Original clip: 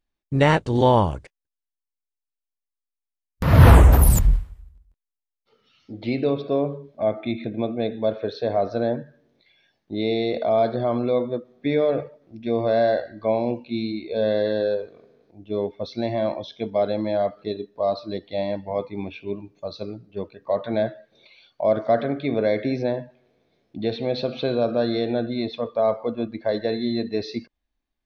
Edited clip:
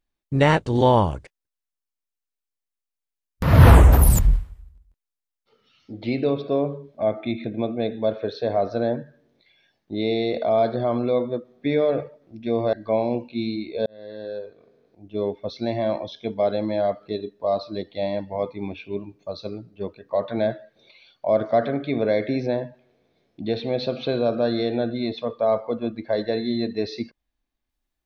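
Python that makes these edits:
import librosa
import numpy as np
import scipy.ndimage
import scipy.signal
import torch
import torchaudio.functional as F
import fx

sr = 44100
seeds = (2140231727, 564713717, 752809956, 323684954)

y = fx.edit(x, sr, fx.cut(start_s=12.73, length_s=0.36),
    fx.fade_in_span(start_s=14.22, length_s=1.34), tone=tone)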